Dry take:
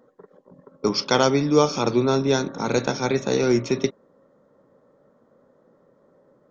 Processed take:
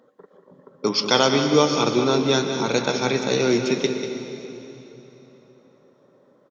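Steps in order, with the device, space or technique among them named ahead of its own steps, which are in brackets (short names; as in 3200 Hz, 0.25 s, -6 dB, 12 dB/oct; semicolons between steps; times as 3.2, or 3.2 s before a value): PA in a hall (HPF 140 Hz 6 dB/oct; bell 3300 Hz +6.5 dB 0.99 oct; echo 0.192 s -10 dB; reverb RT60 3.3 s, pre-delay 0.11 s, DRR 7.5 dB)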